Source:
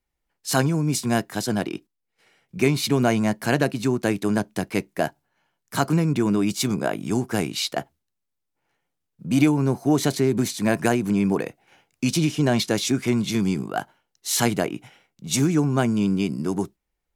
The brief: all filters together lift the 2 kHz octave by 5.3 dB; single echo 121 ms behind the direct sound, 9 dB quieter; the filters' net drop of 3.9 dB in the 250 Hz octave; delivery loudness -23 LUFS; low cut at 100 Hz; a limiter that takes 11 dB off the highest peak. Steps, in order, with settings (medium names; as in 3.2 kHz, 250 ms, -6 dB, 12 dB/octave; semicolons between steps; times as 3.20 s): high-pass 100 Hz; peaking EQ 250 Hz -5 dB; peaking EQ 2 kHz +7 dB; peak limiter -14.5 dBFS; delay 121 ms -9 dB; trim +3.5 dB